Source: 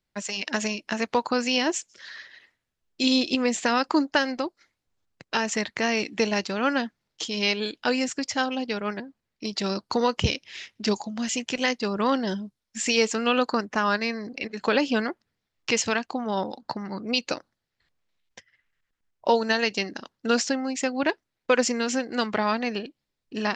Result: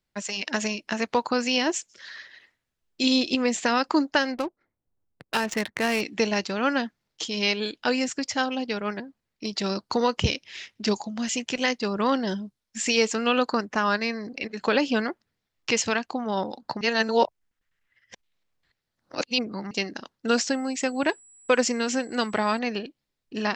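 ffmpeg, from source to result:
ffmpeg -i in.wav -filter_complex "[0:a]asettb=1/sr,asplit=3[link_01][link_02][link_03];[link_01]atrim=end=4.344[link_04];[link_02]atrim=start=4.34:end=6.01,asetpts=PTS-STARTPTS,afade=type=in:duration=0.004:curve=qsin,afade=type=out:start_time=1.666:duration=0.004:curve=qsin,adynamicsmooth=sensitivity=6.5:basefreq=920[link_05];[link_03]atrim=start=6.006[link_06];[link_04][link_05]acrossfade=duration=0.004:curve1=hsin:curve2=qsin[link_07];[link_07][link_06]acrossfade=duration=0.004:curve1=qsin:curve2=hsin,asettb=1/sr,asplit=3[link_08][link_09][link_10];[link_08]atrim=end=20.284[link_11];[link_09]atrim=start=20.28:end=22.59,asetpts=PTS-STARTPTS,afade=type=in:duration=0.004:curve=qsin,afade=type=out:start_time=2.306:duration=0.004:curve=qsin,aeval=exprs='val(0)+0.00282*sin(2*PI*7800*n/s)':channel_layout=same[link_12];[link_10]atrim=start=22.586[link_13];[link_11][link_12]acrossfade=duration=0.004:curve1=hsin:curve2=qsin[link_14];[link_14][link_13]acrossfade=duration=0.004:curve1=qsin:curve2=hsin,asplit=3[link_15][link_16][link_17];[link_15]atrim=end=16.812[link_18];[link_16]atrim=start=16.808:end=19.712,asetpts=PTS-STARTPTS,areverse[link_19];[link_17]atrim=start=19.708[link_20];[link_18][link_19]acrossfade=duration=0.004:curve1=hsin:curve2=hsin[link_21];[link_21][link_20]acrossfade=duration=0.004:curve1=hsin:curve2=hsin" out.wav

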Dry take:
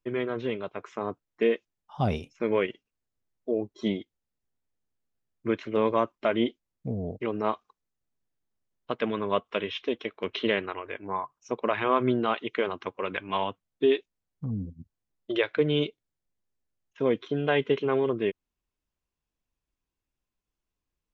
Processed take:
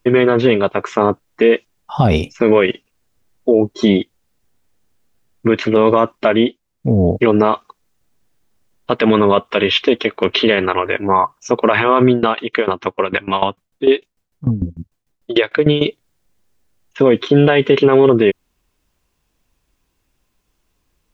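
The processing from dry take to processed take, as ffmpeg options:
ffmpeg -i in.wav -filter_complex "[0:a]asettb=1/sr,asplit=3[link_01][link_02][link_03];[link_01]atrim=end=12.084[link_04];[link_02]atrim=start=12.08:end=15.86,asetpts=PTS-STARTPTS,afade=type=in:duration=0.004:curve=qsin,afade=type=out:start_time=3.776:duration=0.004:curve=qsin,aeval=exprs='val(0)*pow(10,-18*if(lt(mod(6.7*n/s,1),2*abs(6.7)/1000),1-mod(6.7*n/s,1)/(2*abs(6.7)/1000),(mod(6.7*n/s,1)-2*abs(6.7)/1000)/(1-2*abs(6.7)/1000))/20)':channel_layout=same[link_05];[link_03]atrim=start=15.856[link_06];[link_04][link_05]acrossfade=duration=0.004:curve1=hsin:curve2=qsin[link_07];[link_07][link_06]acrossfade=duration=0.004:curve1=qsin:curve2=hsin,asplit=3[link_08][link_09][link_10];[link_08]atrim=end=6.42,asetpts=PTS-STARTPTS,afade=type=out:start_time=6.18:duration=0.24:silence=0.375837[link_11];[link_09]atrim=start=6.42:end=6.78,asetpts=PTS-STARTPTS,volume=-8.5dB[link_12];[link_10]atrim=start=6.78,asetpts=PTS-STARTPTS,afade=type=in:duration=0.24:silence=0.375837[link_13];[link_11][link_12][link_13]concat=n=3:v=0:a=1,alimiter=level_in=21dB:limit=-1dB:release=50:level=0:latency=1,volume=-1dB" out.wav

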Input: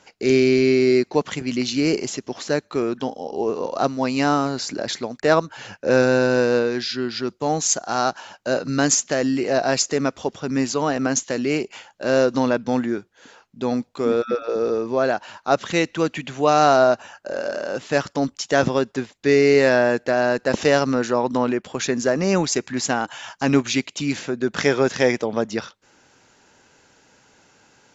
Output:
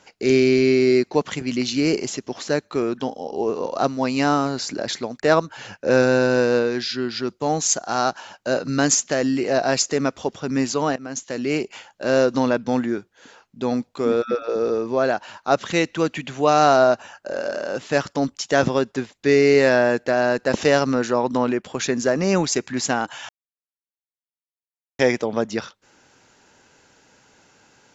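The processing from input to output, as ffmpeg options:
ffmpeg -i in.wav -filter_complex "[0:a]asplit=4[link_01][link_02][link_03][link_04];[link_01]atrim=end=10.96,asetpts=PTS-STARTPTS,afade=type=out:start_time=10.956:duration=0.004:curve=hsin:silence=0.105925[link_05];[link_02]atrim=start=10.96:end=23.29,asetpts=PTS-STARTPTS,afade=type=in:duration=0.62:silence=0.105925,afade=type=out:start_time=12.326:duration=0.004:curve=hsin[link_06];[link_03]atrim=start=23.29:end=24.99,asetpts=PTS-STARTPTS,volume=0[link_07];[link_04]atrim=start=24.99,asetpts=PTS-STARTPTS,afade=type=in:duration=0.004:curve=hsin[link_08];[link_05][link_06][link_07][link_08]concat=n=4:v=0:a=1" out.wav

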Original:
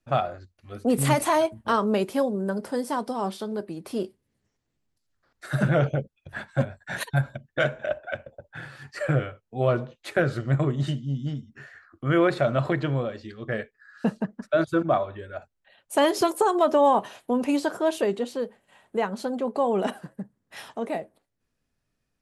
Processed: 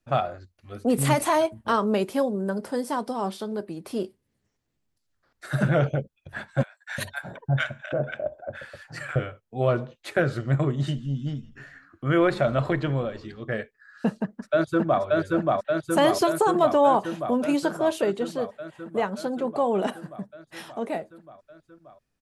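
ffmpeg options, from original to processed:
ffmpeg -i in.wav -filter_complex "[0:a]asettb=1/sr,asplit=3[link_01][link_02][link_03];[link_01]atrim=end=6.634[link_04];[link_02]atrim=start=6.63:end=9.16,asetpts=PTS-STARTPTS,afade=type=in:duration=0.004:curve=qsin,afade=type=out:start_time=2.526:duration=0.004:curve=qsin,acrossover=split=930[link_05][link_06];[link_05]adelay=350[link_07];[link_07][link_06]amix=inputs=2:normalize=0,atrim=end_sample=111573[link_08];[link_03]atrim=start=9.156[link_09];[link_04][link_08]acrossfade=duration=0.004:curve1=hsin:curve2=qsin[link_10];[link_10][link_09]acrossfade=duration=0.004:curve1=qsin:curve2=hsin,asettb=1/sr,asplit=3[link_11][link_12][link_13];[link_11]atrim=end=10.804[link_14];[link_12]atrim=start=10.8:end=13.43,asetpts=PTS-STARTPTS,afade=type=in:duration=0.004:curve=qsin,afade=type=out:start_time=2.626:duration=0.004:curve=qsin,asplit=4[link_15][link_16][link_17][link_18];[link_16]adelay=165,afreqshift=-140,volume=-21dB[link_19];[link_17]adelay=330,afreqshift=-280,volume=-27.7dB[link_20];[link_18]adelay=495,afreqshift=-420,volume=-34.5dB[link_21];[link_15][link_19][link_20][link_21]amix=inputs=4:normalize=0,atrim=end_sample=115983[link_22];[link_13]atrim=start=13.426[link_23];[link_14][link_22]acrossfade=duration=0.004:curve1=hsin:curve2=qsin[link_24];[link_24][link_23]acrossfade=duration=0.004:curve1=qsin:curve2=hsin,asplit=2[link_25][link_26];[link_26]afade=type=in:start_time=14.17:duration=0.01,afade=type=out:start_time=15.02:duration=0.01,aecho=0:1:580|1160|1740|2320|2900|3480|4060|4640|5220|5800|6380|6960:0.891251|0.668438|0.501329|0.375996|0.281997|0.211498|0.158624|0.118968|0.0892257|0.0669193|0.0501895|0.0376421[link_27];[link_25][link_27]amix=inputs=2:normalize=0" out.wav

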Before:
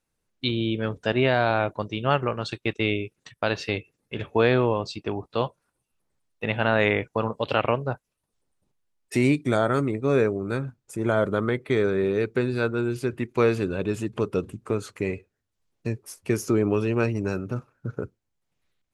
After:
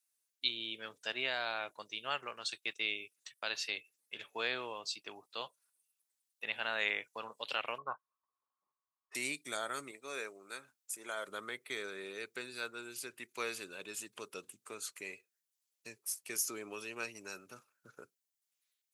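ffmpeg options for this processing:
ffmpeg -i in.wav -filter_complex "[0:a]asettb=1/sr,asplit=3[link_01][link_02][link_03];[link_01]atrim=end=7.784[link_04];[link_02]atrim=start=7.78:end=9.15,asetpts=PTS-STARTPTS,afade=type=in:duration=0.004:curve=qsin,afade=type=out:start_time=1.366:duration=0.004:curve=qsin,lowpass=frequency=1100:width_type=q:width=13[link_05];[link_03]atrim=start=9.146[link_06];[link_04][link_05]acrossfade=duration=0.004:curve1=hsin:curve2=qsin[link_07];[link_07][link_06]acrossfade=duration=0.004:curve1=qsin:curve2=hsin,asettb=1/sr,asplit=3[link_08][link_09][link_10];[link_08]atrim=end=9.914[link_11];[link_09]atrim=start=9.91:end=11.28,asetpts=PTS-STARTPTS,afade=type=in:duration=0.004:curve=qsin,afade=type=out:start_time=1.366:duration=0.004:curve=qsin,highpass=frequency=380:poles=1[link_12];[link_10]atrim=start=11.276[link_13];[link_11][link_12]acrossfade=duration=0.004:curve1=hsin:curve2=qsin[link_14];[link_14][link_13]acrossfade=duration=0.004:curve1=qsin:curve2=hsin,highpass=120,aderivative,volume=2dB" out.wav

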